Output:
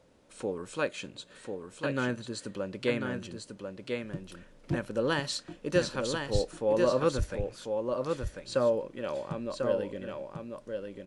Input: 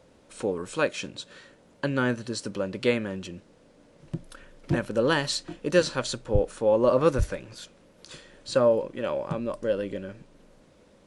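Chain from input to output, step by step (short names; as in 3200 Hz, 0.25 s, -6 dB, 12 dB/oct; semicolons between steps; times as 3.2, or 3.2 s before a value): 0.88–2.57 notch 5500 Hz, Q 6.7; echo 1.044 s -5 dB; gain -5.5 dB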